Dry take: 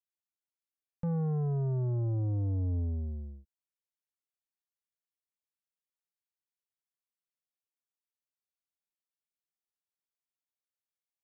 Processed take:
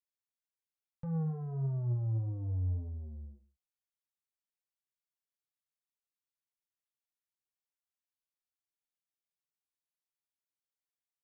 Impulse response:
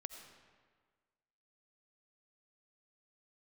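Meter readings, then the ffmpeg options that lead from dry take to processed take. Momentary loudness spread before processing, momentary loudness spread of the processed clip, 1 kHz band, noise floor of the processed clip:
8 LU, 13 LU, n/a, under -85 dBFS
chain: -filter_complex "[0:a]firequalizer=gain_entry='entry(130,0);entry(250,-7);entry(860,-2)':delay=0.05:min_phase=1,flanger=delay=6.1:depth=4.1:regen=37:speed=1.7:shape=sinusoidal,asplit=2[a][b];[b]aecho=0:1:121:0.15[c];[a][c]amix=inputs=2:normalize=0"

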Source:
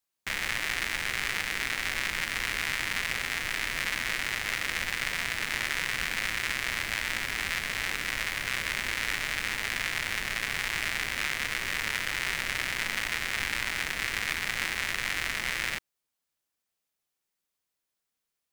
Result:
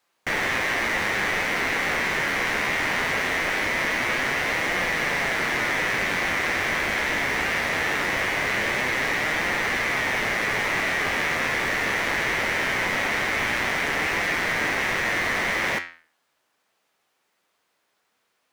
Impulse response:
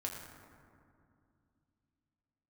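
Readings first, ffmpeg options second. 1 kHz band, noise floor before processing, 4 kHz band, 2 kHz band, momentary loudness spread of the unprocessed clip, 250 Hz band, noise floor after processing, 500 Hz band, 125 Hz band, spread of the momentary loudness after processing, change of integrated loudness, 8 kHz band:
+11.0 dB, -85 dBFS, +2.0 dB, +7.0 dB, 1 LU, +13.0 dB, -73 dBFS, +15.5 dB, +7.5 dB, 0 LU, +6.5 dB, +1.5 dB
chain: -filter_complex "[0:a]flanger=delay=5.5:depth=9.2:regen=82:speed=0.21:shape=triangular,asplit=2[a][b];[b]highpass=f=720:p=1,volume=29dB,asoftclip=type=tanh:threshold=-15dB[c];[a][c]amix=inputs=2:normalize=0,lowpass=f=1k:p=1,volume=-6dB,volume=7dB"

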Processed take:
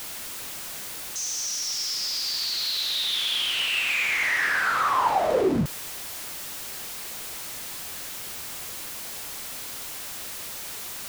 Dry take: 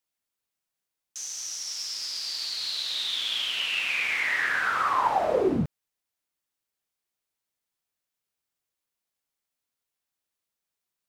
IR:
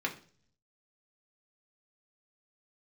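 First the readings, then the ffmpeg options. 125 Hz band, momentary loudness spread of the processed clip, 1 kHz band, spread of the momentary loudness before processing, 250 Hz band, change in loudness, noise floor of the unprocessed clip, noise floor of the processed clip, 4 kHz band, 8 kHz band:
+2.5 dB, 11 LU, +2.0 dB, 8 LU, +2.0 dB, 0.0 dB, under -85 dBFS, -36 dBFS, +4.0 dB, +7.5 dB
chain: -af "aeval=exprs='val(0)+0.5*0.0355*sgn(val(0))':c=same"

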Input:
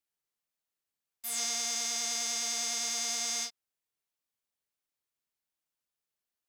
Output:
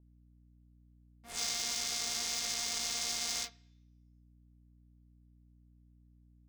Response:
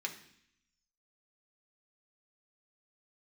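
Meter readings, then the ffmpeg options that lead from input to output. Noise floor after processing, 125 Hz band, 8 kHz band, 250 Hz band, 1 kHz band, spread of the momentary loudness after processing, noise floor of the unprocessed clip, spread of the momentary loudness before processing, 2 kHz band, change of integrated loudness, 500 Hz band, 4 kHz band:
-63 dBFS, n/a, -4.5 dB, -2.0 dB, -3.0 dB, 4 LU, under -85 dBFS, 5 LU, -1.5 dB, -3.0 dB, -3.0 dB, -1.0 dB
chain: -filter_complex "[0:a]volume=22dB,asoftclip=hard,volume=-22dB,adynamicsmooth=sensitivity=8:basefreq=870,asplit=2[a][b];[1:a]atrim=start_sample=2205,lowpass=4.9k[c];[b][c]afir=irnorm=-1:irlink=0,volume=-12dB[d];[a][d]amix=inputs=2:normalize=0,aeval=exprs='val(0)+0.000891*(sin(2*PI*60*n/s)+sin(2*PI*2*60*n/s)/2+sin(2*PI*3*60*n/s)/3+sin(2*PI*4*60*n/s)/4+sin(2*PI*5*60*n/s)/5)':c=same,adynamicequalizer=threshold=0.00501:dfrequency=4500:dqfactor=0.7:tfrequency=4500:tqfactor=0.7:attack=5:release=100:ratio=0.375:range=2:mode=boostabove:tftype=highshelf"

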